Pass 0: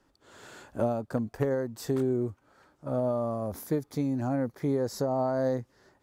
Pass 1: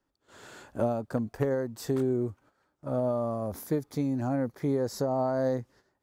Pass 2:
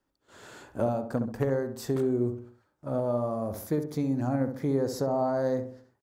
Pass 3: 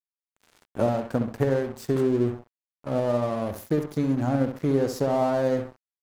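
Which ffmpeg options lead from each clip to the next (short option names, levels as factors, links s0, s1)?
-af "agate=range=0.251:threshold=0.00178:ratio=16:detection=peak"
-filter_complex "[0:a]asplit=2[s0][s1];[s1]adelay=66,lowpass=f=1300:p=1,volume=0.447,asplit=2[s2][s3];[s3]adelay=66,lowpass=f=1300:p=1,volume=0.46,asplit=2[s4][s5];[s5]adelay=66,lowpass=f=1300:p=1,volume=0.46,asplit=2[s6][s7];[s7]adelay=66,lowpass=f=1300:p=1,volume=0.46,asplit=2[s8][s9];[s9]adelay=66,lowpass=f=1300:p=1,volume=0.46[s10];[s0][s2][s4][s6][s8][s10]amix=inputs=6:normalize=0"
-af "aeval=exprs='sgn(val(0))*max(abs(val(0))-0.0075,0)':c=same,volume=1.78"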